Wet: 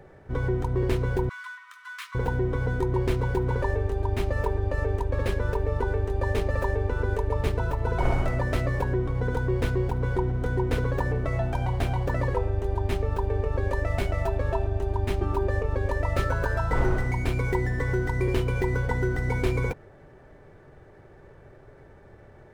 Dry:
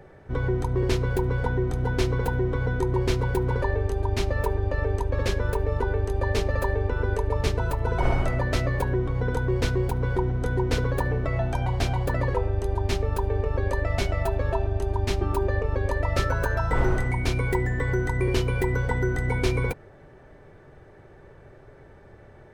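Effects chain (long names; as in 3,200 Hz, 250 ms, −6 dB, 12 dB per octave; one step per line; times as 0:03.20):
running median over 9 samples
0:01.29–0:02.15: linear-phase brick-wall high-pass 990 Hz
level −1 dB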